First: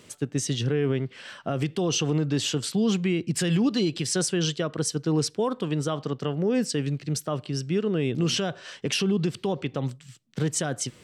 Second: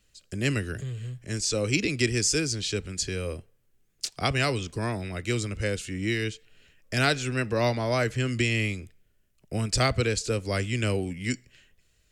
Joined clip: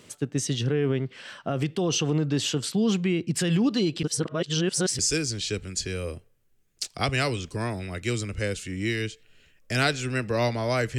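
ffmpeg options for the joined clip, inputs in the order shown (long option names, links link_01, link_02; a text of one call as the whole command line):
ffmpeg -i cue0.wav -i cue1.wav -filter_complex "[0:a]apad=whole_dur=10.98,atrim=end=10.98,asplit=2[link_01][link_02];[link_01]atrim=end=4.032[link_03];[link_02]atrim=start=4.028:end=4.992,asetpts=PTS-STARTPTS,areverse[link_04];[1:a]atrim=start=2.208:end=8.2[link_05];[link_03][link_04]acrossfade=duration=0.004:curve1=hsin:curve2=hsin[link_06];[link_06][link_05]acrossfade=duration=0.004:curve1=hsin:curve2=hsin" out.wav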